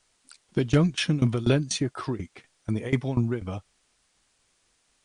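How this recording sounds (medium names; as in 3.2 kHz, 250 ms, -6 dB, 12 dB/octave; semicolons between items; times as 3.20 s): tremolo saw down 4.1 Hz, depth 90%; a quantiser's noise floor 12-bit, dither triangular; MP2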